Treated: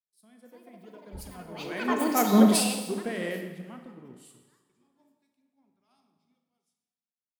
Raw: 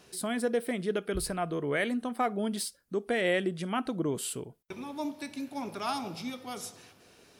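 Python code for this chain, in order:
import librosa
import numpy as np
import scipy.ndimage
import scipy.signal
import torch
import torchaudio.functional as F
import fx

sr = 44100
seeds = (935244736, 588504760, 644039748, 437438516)

y = fx.doppler_pass(x, sr, speed_mps=8, closest_m=2.3, pass_at_s=2.49)
y = fx.echo_pitch(y, sr, ms=361, semitones=6, count=2, db_per_echo=-3.0)
y = fx.peak_eq(y, sr, hz=200.0, db=7.0, octaves=0.86)
y = fx.rev_schroeder(y, sr, rt60_s=2.2, comb_ms=29, drr_db=3.5)
y = fx.band_widen(y, sr, depth_pct=100)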